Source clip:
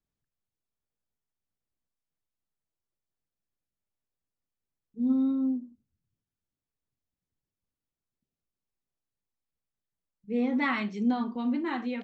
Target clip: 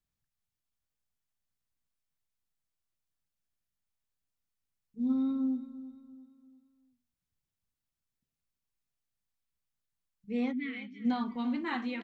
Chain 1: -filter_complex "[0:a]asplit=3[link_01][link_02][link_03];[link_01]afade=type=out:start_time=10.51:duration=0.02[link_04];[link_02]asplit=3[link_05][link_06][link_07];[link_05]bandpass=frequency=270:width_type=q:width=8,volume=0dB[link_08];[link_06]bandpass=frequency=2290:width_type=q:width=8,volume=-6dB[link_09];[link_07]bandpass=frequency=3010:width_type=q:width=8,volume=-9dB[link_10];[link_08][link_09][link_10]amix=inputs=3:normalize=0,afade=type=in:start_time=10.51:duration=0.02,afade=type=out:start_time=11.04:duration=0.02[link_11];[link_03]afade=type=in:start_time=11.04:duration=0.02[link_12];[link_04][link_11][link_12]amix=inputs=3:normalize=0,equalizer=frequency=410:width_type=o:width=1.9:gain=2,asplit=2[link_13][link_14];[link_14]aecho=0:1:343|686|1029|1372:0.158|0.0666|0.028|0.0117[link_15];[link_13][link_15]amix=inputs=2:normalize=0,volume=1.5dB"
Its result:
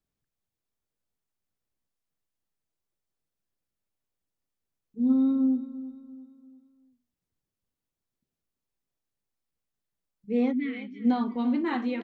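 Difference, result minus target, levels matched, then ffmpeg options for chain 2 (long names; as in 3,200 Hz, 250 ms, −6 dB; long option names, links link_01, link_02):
500 Hz band +2.5 dB
-filter_complex "[0:a]asplit=3[link_01][link_02][link_03];[link_01]afade=type=out:start_time=10.51:duration=0.02[link_04];[link_02]asplit=3[link_05][link_06][link_07];[link_05]bandpass=frequency=270:width_type=q:width=8,volume=0dB[link_08];[link_06]bandpass=frequency=2290:width_type=q:width=8,volume=-6dB[link_09];[link_07]bandpass=frequency=3010:width_type=q:width=8,volume=-9dB[link_10];[link_08][link_09][link_10]amix=inputs=3:normalize=0,afade=type=in:start_time=10.51:duration=0.02,afade=type=out:start_time=11.04:duration=0.02[link_11];[link_03]afade=type=in:start_time=11.04:duration=0.02[link_12];[link_04][link_11][link_12]amix=inputs=3:normalize=0,equalizer=frequency=410:width_type=o:width=1.9:gain=-8,asplit=2[link_13][link_14];[link_14]aecho=0:1:343|686|1029|1372:0.158|0.0666|0.028|0.0117[link_15];[link_13][link_15]amix=inputs=2:normalize=0,volume=1.5dB"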